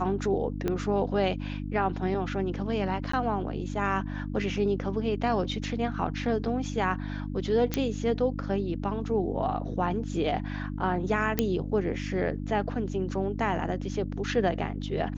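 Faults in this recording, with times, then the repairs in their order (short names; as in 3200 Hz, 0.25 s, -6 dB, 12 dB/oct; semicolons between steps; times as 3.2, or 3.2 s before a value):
hum 50 Hz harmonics 6 -34 dBFS
0.68 pop -16 dBFS
3.12–3.13 gap 14 ms
7.74 pop -11 dBFS
11.39 pop -9 dBFS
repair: de-click; de-hum 50 Hz, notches 6; interpolate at 3.12, 14 ms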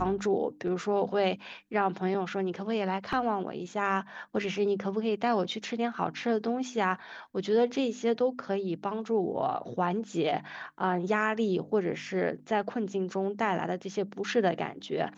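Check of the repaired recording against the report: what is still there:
0.68 pop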